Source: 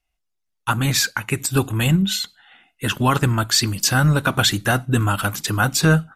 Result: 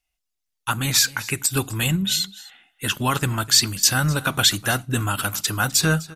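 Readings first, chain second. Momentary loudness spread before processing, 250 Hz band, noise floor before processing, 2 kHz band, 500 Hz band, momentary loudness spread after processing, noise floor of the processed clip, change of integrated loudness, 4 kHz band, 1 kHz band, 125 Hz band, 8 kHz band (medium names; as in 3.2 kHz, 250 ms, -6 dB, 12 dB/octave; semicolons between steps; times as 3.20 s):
7 LU, -5.5 dB, -75 dBFS, -2.0 dB, -5.0 dB, 8 LU, -80 dBFS, -1.0 dB, +1.5 dB, -3.5 dB, -5.5 dB, +3.0 dB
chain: treble shelf 2.2 kHz +9 dB; on a send: delay 253 ms -19.5 dB; on the sum: trim -5.5 dB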